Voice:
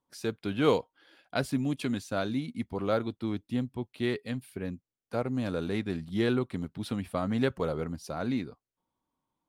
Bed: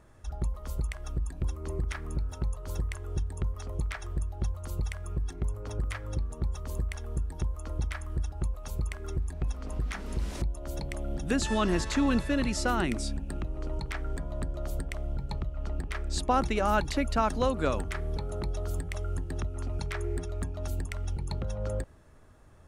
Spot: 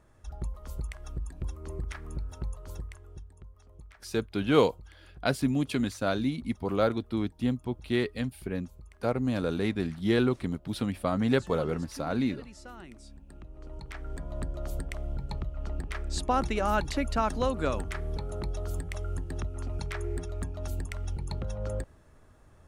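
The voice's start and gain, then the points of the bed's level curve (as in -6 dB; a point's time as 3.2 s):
3.90 s, +2.5 dB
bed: 2.61 s -4 dB
3.43 s -18.5 dB
12.99 s -18.5 dB
14.37 s -1 dB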